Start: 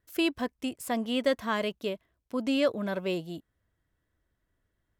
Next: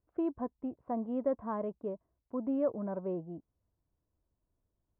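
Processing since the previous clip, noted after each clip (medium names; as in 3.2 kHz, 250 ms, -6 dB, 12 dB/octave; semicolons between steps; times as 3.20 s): Chebyshev low-pass 980 Hz, order 3; trim -4 dB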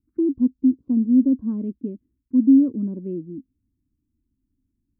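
FFT filter 170 Hz 0 dB, 260 Hz +15 dB, 690 Hz -26 dB, 2.5 kHz -9 dB; touch-sensitive phaser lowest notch 570 Hz, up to 2.3 kHz, full sweep at -26 dBFS; trim +7 dB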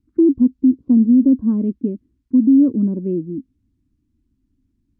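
peak limiter -14.5 dBFS, peak gain reduction 7.5 dB; distance through air 57 m; trim +8 dB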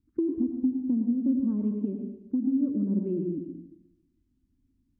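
compression 5:1, threshold -19 dBFS, peak gain reduction 9.5 dB; plate-style reverb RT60 0.92 s, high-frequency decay 0.95×, pre-delay 80 ms, DRR 4 dB; trim -6.5 dB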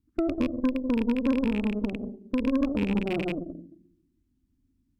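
rattle on loud lows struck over -30 dBFS, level -28 dBFS; Chebyshev shaper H 4 -15 dB, 8 -24 dB, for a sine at -15 dBFS; endings held to a fixed fall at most 580 dB/s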